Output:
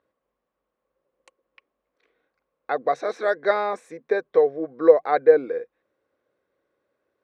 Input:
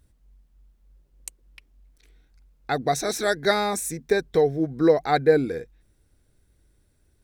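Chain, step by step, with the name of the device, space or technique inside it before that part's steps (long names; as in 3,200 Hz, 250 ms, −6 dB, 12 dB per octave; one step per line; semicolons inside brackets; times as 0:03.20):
tin-can telephone (band-pass filter 420–2,100 Hz; hollow resonant body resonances 530/1,100 Hz, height 11 dB, ringing for 30 ms)
level −1 dB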